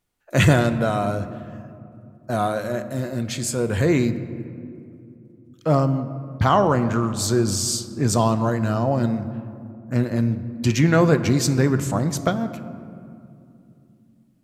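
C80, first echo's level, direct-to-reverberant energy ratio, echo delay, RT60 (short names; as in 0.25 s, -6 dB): 13.0 dB, none, 10.5 dB, none, 2.7 s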